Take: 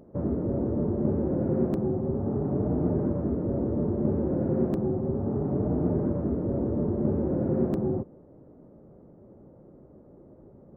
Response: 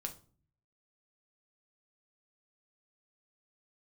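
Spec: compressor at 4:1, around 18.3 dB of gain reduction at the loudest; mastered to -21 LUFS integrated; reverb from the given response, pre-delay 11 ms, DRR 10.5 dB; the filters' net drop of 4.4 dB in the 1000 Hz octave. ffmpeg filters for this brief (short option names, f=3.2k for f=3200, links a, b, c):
-filter_complex "[0:a]equalizer=f=1k:t=o:g=-6.5,acompressor=threshold=-44dB:ratio=4,asplit=2[a][b];[1:a]atrim=start_sample=2205,adelay=11[c];[b][c]afir=irnorm=-1:irlink=0,volume=-9dB[d];[a][d]amix=inputs=2:normalize=0,volume=24dB"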